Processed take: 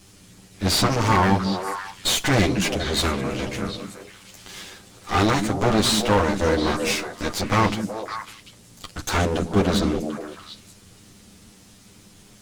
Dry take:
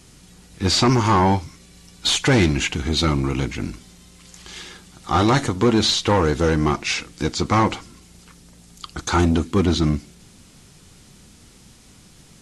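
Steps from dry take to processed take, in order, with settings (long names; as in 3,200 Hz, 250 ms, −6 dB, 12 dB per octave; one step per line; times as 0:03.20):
lower of the sound and its delayed copy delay 10 ms
echo through a band-pass that steps 186 ms, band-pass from 200 Hz, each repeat 1.4 octaves, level −2 dB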